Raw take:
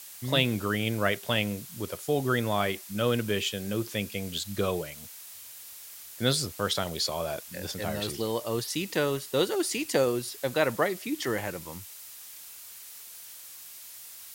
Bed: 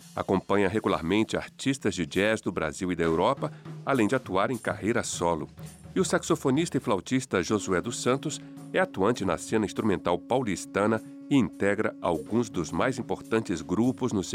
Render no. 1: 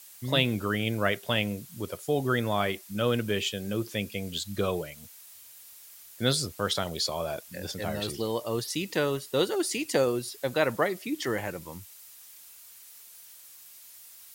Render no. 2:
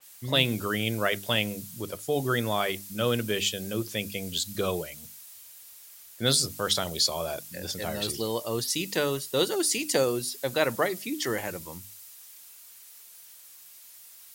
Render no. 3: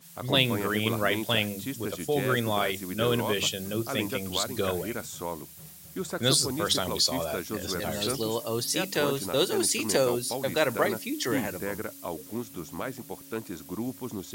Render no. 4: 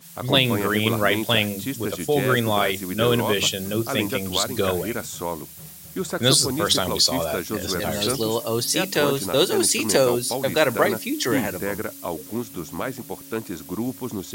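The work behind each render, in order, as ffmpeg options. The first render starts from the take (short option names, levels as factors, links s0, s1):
-af "afftdn=nr=6:nf=-46"
-af "bandreject=f=50:t=h:w=6,bandreject=f=100:t=h:w=6,bandreject=f=150:t=h:w=6,bandreject=f=200:t=h:w=6,bandreject=f=250:t=h:w=6,bandreject=f=300:t=h:w=6,adynamicequalizer=threshold=0.00631:dfrequency=3500:dqfactor=0.7:tfrequency=3500:tqfactor=0.7:attack=5:release=100:ratio=0.375:range=3.5:mode=boostabove:tftype=highshelf"
-filter_complex "[1:a]volume=0.376[s0];[0:a][s0]amix=inputs=2:normalize=0"
-af "volume=2,alimiter=limit=0.708:level=0:latency=1"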